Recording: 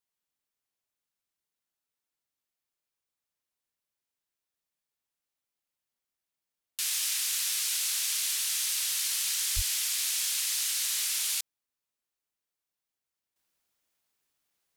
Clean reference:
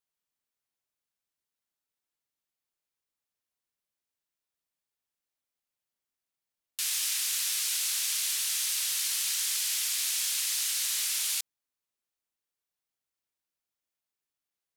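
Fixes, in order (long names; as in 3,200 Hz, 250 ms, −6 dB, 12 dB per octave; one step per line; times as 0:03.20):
high-pass at the plosives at 0:09.55
level 0 dB, from 0:13.36 −9.5 dB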